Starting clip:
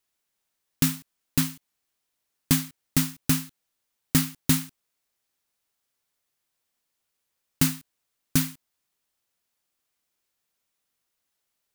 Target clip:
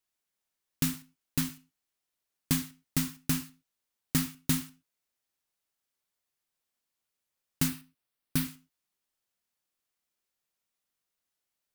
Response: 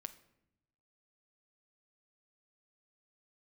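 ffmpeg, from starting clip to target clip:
-filter_complex "[0:a]asettb=1/sr,asplit=3[a][b][c];[a]atrim=end=7.684[d];[b]atrim=start=7.68:end=8.45,asetpts=PTS-STARTPTS,afade=t=in:d=0.004:c=qsin,afade=t=out:st=0.766:d=0.004:c=qsin,equalizer=f=6.8k:w=3.4:g=-9[e];[c]atrim=start=8.446[f];[d][e]acrossfade=d=0.004:c1=hsin:c2=qsin[g];[g][f]acrossfade=d=0.004:c1=qsin:c2=hsin[h];[1:a]atrim=start_sample=2205,afade=t=out:st=0.21:d=0.01,atrim=end_sample=9702,asetrate=52920,aresample=44100[i];[h][i]afir=irnorm=-1:irlink=0"

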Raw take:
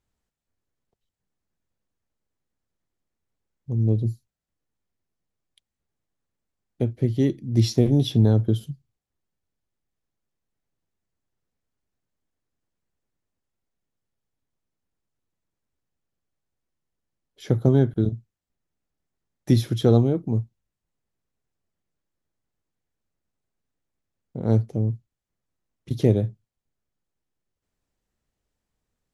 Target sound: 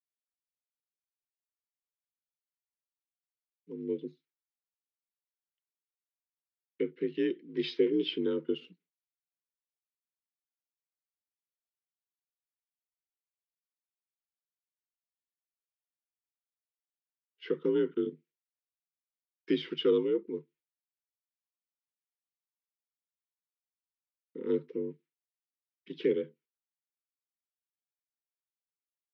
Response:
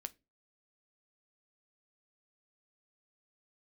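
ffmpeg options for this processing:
-filter_complex "[0:a]agate=range=-33dB:threshold=-42dB:ratio=3:detection=peak,asuperstop=centerf=720:order=20:qfactor=1.7,equalizer=f=1.9k:t=o:w=1.1:g=-2,aphaser=in_gain=1:out_gain=1:delay=4.8:decay=0.24:speed=0.16:type=sinusoidal,asetrate=39289,aresample=44100,atempo=1.12246,asplit=2[a][b];[1:a]atrim=start_sample=2205,afade=t=out:st=0.21:d=0.01,atrim=end_sample=9702,asetrate=48510,aresample=44100[c];[b][c]afir=irnorm=-1:irlink=0,volume=-9dB[d];[a][d]amix=inputs=2:normalize=0,afreqshift=51,highpass=f=360:w=0.5412,highpass=f=360:w=1.3066,equalizer=f=570:t=q:w=4:g=-8,equalizer=f=1.1k:t=q:w=4:g=-9,equalizer=f=2.2k:t=q:w=4:g=5,lowpass=f=3.2k:w=0.5412,lowpass=f=3.2k:w=1.3066,volume=-2dB"

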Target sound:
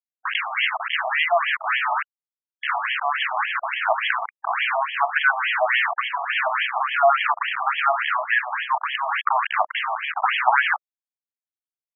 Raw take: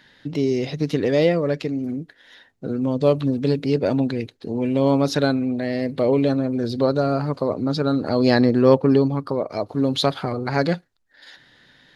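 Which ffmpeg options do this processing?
-af "acrusher=bits=4:mix=0:aa=0.000001,alimiter=level_in=12dB:limit=-1dB:release=50:level=0:latency=1,afftfilt=real='re*between(b*sr/1024,860*pow(2400/860,0.5+0.5*sin(2*PI*3.5*pts/sr))/1.41,860*pow(2400/860,0.5+0.5*sin(2*PI*3.5*pts/sr))*1.41)':imag='im*between(b*sr/1024,860*pow(2400/860,0.5+0.5*sin(2*PI*3.5*pts/sr))/1.41,860*pow(2400/860,0.5+0.5*sin(2*PI*3.5*pts/sr))*1.41)':win_size=1024:overlap=0.75,volume=5dB"

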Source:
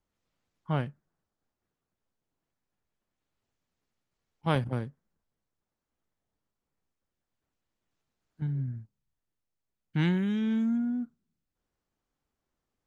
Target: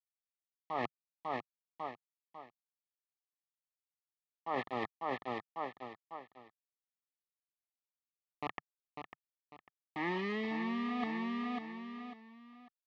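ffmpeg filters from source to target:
-filter_complex "[0:a]acrossover=split=330 2000:gain=0.0794 1 0.0708[a][b][c];[a][b][c]amix=inputs=3:normalize=0,acrusher=bits=6:mix=0:aa=0.000001,asuperstop=centerf=1500:order=8:qfactor=3.2,highpass=110,equalizer=f=150:t=q:w=4:g=-8,equalizer=f=530:t=q:w=4:g=-6,equalizer=f=780:t=q:w=4:g=5,equalizer=f=1.2k:t=q:w=4:g=5,equalizer=f=1.8k:t=q:w=4:g=8,lowpass=f=3.6k:w=0.5412,lowpass=f=3.6k:w=1.3066,aecho=1:1:548|1096|1644:0.316|0.0949|0.0285,areverse,acompressor=threshold=-47dB:ratio=10,areverse,volume=13.5dB"

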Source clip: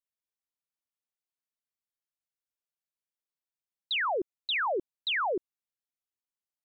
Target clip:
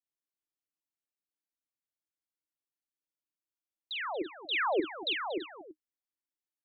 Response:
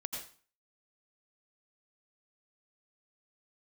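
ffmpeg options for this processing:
-filter_complex "[0:a]equalizer=f=310:w=4.1:g=14,asettb=1/sr,asplit=3[a][b][c];[a]atrim=end=4.514[d];[b]atrim=start=4.51:end=5.13,asetpts=PTS-STARTPTS,afade=t=in:d=0.004:c=qsin,afade=t=out:st=0.616:d=0.004:c=qsin,acontrast=63[e];[c]atrim=start=5.126[f];[d][e]acrossfade=d=0.004:c1=hsin:c2=qsin[g];[g][f]acrossfade=d=0.004:c1=qsin:c2=hsin,asplit=2[h][i];[i]aecho=0:1:46|234|333:0.376|0.158|0.168[j];[h][j]amix=inputs=2:normalize=0,volume=-8dB"

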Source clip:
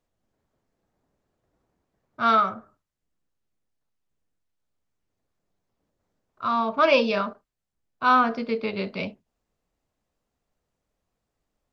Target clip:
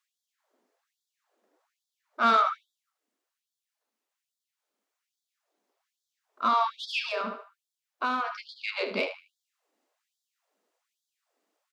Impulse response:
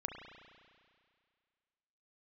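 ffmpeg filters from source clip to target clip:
-filter_complex "[0:a]acrossover=split=370|1700[a][b][c];[a]acompressor=threshold=-32dB:ratio=4[d];[b]acompressor=threshold=-26dB:ratio=4[e];[c]acompressor=threshold=-29dB:ratio=4[f];[d][e][f]amix=inputs=3:normalize=0,asplit=2[g][h];[h]asoftclip=type=tanh:threshold=-24.5dB,volume=-5dB[i];[g][i]amix=inputs=2:normalize=0,asplit=2[j][k];[k]adelay=76,lowpass=f=4.6k:p=1,volume=-9dB,asplit=2[l][m];[m]adelay=76,lowpass=f=4.6k:p=1,volume=0.32,asplit=2[n][o];[o]adelay=76,lowpass=f=4.6k:p=1,volume=0.32,asplit=2[p][q];[q]adelay=76,lowpass=f=4.6k:p=1,volume=0.32[r];[j][l][n][p][r]amix=inputs=5:normalize=0,asettb=1/sr,asplit=3[s][t][u];[s]atrim=end=7.084[v];[t]atrim=start=7.08:end=8.56,asetpts=PTS-STARTPTS,afade=t=in:d=0.004:c=qsin,afade=t=out:st=1.476:d=0.004:c=qsin,acompressor=threshold=-27dB:ratio=4[w];[u]atrim=start=8.556[x];[v][w]acrossfade=d=0.004:c1=hsin:c2=qsin[y];[y][x]acrossfade=d=0.004:c1=qsin:c2=hsin,afftfilt=real='re*gte(b*sr/1024,200*pow(3300/200,0.5+0.5*sin(2*PI*1.2*pts/sr)))':imag='im*gte(b*sr/1024,200*pow(3300/200,0.5+0.5*sin(2*PI*1.2*pts/sr)))':win_size=1024:overlap=0.75"

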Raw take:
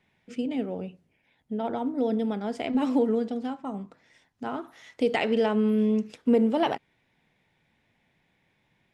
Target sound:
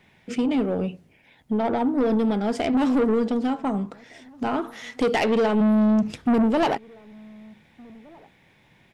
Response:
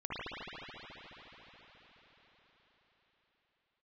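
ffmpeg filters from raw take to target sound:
-filter_complex "[0:a]asplit=3[a][b][c];[a]afade=t=out:st=5.6:d=0.02[d];[b]asubboost=boost=6:cutoff=170,afade=t=in:st=5.6:d=0.02,afade=t=out:st=6.42:d=0.02[e];[c]afade=t=in:st=6.42:d=0.02[f];[d][e][f]amix=inputs=3:normalize=0,asplit=2[g][h];[h]acompressor=threshold=-32dB:ratio=6,volume=-0.5dB[i];[g][i]amix=inputs=2:normalize=0,asoftclip=type=tanh:threshold=-22.5dB,asplit=2[j][k];[k]adelay=1516,volume=-26dB,highshelf=f=4k:g=-34.1[l];[j][l]amix=inputs=2:normalize=0,volume=6dB"

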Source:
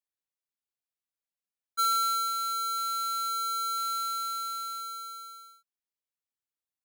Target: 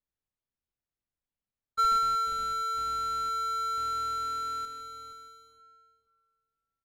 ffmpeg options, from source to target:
-filter_complex "[0:a]asplit=2[a][b];[b]acrusher=bits=5:mix=0:aa=0.000001,volume=-8dB[c];[a][c]amix=inputs=2:normalize=0,aemphasis=mode=reproduction:type=riaa,asplit=2[d][e];[e]adelay=473,lowpass=f=1.6k:p=1,volume=-8dB,asplit=2[f][g];[g]adelay=473,lowpass=f=1.6k:p=1,volume=0.21,asplit=2[h][i];[i]adelay=473,lowpass=f=1.6k:p=1,volume=0.21[j];[d][f][h][j]amix=inputs=4:normalize=0"

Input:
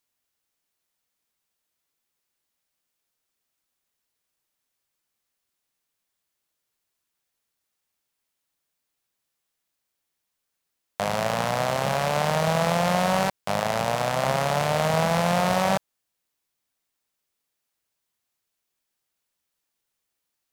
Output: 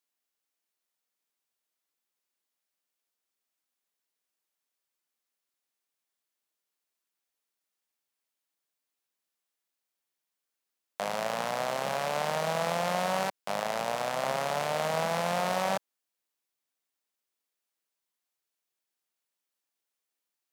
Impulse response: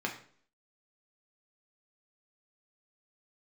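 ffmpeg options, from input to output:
-af "highpass=230,volume=-6dB"

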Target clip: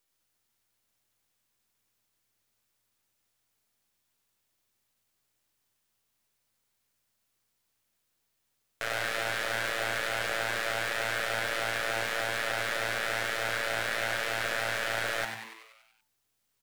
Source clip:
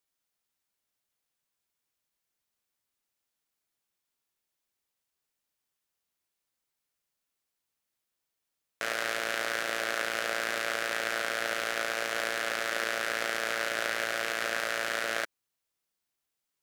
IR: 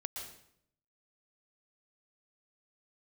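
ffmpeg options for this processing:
-filter_complex "[0:a]aeval=exprs='if(lt(val(0),0),0.447*val(0),val(0))':c=same,alimiter=limit=-18.5dB:level=0:latency=1,asoftclip=type=tanh:threshold=-25.5dB,asplit=9[a][b][c][d][e][f][g][h][i];[b]adelay=95,afreqshift=110,volume=-7dB[j];[c]adelay=190,afreqshift=220,volume=-11.6dB[k];[d]adelay=285,afreqshift=330,volume=-16.2dB[l];[e]adelay=380,afreqshift=440,volume=-20.7dB[m];[f]adelay=475,afreqshift=550,volume=-25.3dB[n];[g]adelay=570,afreqshift=660,volume=-29.9dB[o];[h]adelay=665,afreqshift=770,volume=-34.5dB[p];[i]adelay=760,afreqshift=880,volume=-39.1dB[q];[a][j][k][l][m][n][o][p][q]amix=inputs=9:normalize=0,volume=8dB"

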